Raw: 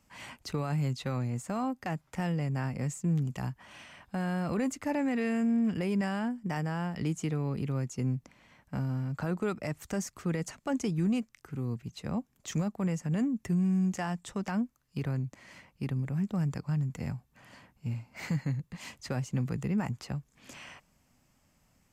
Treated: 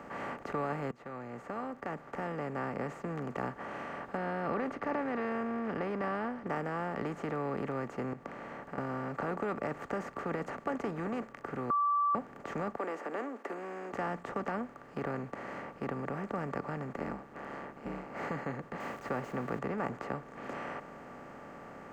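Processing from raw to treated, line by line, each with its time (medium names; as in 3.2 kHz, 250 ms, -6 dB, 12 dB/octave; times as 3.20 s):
0.91–3.24 s: fade in
4.17–6.47 s: Savitzky-Golay filter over 15 samples
8.13–8.78 s: compression, threshold -46 dBFS
11.70–12.15 s: bleep 1.16 kHz -19.5 dBFS
12.77–13.93 s: steep high-pass 320 Hz 48 dB/octave
16.93–18.10 s: ring modulator 72 Hz
18.80–19.59 s: zero-crossing glitches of -39.5 dBFS
whole clip: spectral levelling over time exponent 0.4; three-band isolator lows -13 dB, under 330 Hz, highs -22 dB, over 2.1 kHz; band-stop 1.1 kHz, Q 12; trim -3.5 dB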